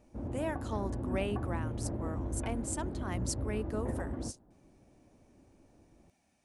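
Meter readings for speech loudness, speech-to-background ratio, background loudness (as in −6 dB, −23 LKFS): −39.5 LKFS, −1.5 dB, −38.0 LKFS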